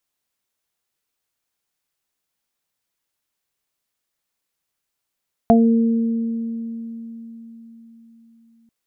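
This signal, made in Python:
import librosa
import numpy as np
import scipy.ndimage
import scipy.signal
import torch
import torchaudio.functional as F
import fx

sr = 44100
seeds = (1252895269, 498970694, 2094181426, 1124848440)

y = fx.additive(sr, length_s=3.19, hz=229.0, level_db=-10.0, upper_db=(-8.0, 2.5), decay_s=4.41, upper_decays_s=(2.23, 0.21))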